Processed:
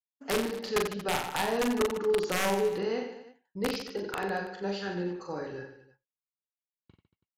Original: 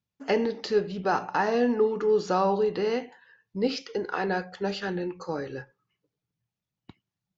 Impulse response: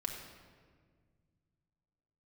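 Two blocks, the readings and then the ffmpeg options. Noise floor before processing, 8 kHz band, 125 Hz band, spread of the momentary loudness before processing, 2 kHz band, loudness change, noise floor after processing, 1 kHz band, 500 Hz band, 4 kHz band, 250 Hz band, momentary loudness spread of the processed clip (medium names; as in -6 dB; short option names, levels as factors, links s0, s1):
under -85 dBFS, no reading, -3.0 dB, 10 LU, -1.0 dB, -3.5 dB, under -85 dBFS, -5.0 dB, -4.0 dB, +1.5 dB, -4.0 dB, 11 LU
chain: -filter_complex "[0:a]agate=range=0.0224:threshold=0.00794:ratio=3:detection=peak,aeval=exprs='(mod(5.62*val(0)+1,2)-1)/5.62':c=same,asplit=2[s0][s1];[s1]aecho=0:1:40|90|152.5|230.6|328.3:0.631|0.398|0.251|0.158|0.1[s2];[s0][s2]amix=inputs=2:normalize=0,aresample=32000,aresample=44100,volume=0.501"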